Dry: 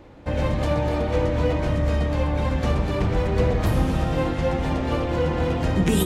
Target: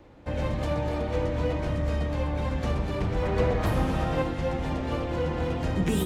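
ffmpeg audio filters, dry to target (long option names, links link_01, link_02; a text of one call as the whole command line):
ffmpeg -i in.wav -filter_complex "[0:a]asettb=1/sr,asplit=3[link_01][link_02][link_03];[link_01]atrim=end=3.224[link_04];[link_02]atrim=start=3.22:end=4.22,asetpts=PTS-STARTPTS,afade=type=in:duration=0.004:curve=qsin,afade=type=out:start_time=0.996:duration=0.004:curve=qsin,equalizer=frequency=1100:width=0.39:gain=5[link_05];[link_03]atrim=start=4.216[link_06];[link_04][link_05]acrossfade=duration=0.004:curve1=hsin:curve2=qsin[link_07];[link_07][link_06]acrossfade=duration=0.004:curve1=qsin:curve2=hsin,acrossover=split=270|2900[link_08][link_09][link_10];[link_10]asoftclip=type=hard:threshold=-30.5dB[link_11];[link_08][link_09][link_11]amix=inputs=3:normalize=0,volume=-5.5dB" out.wav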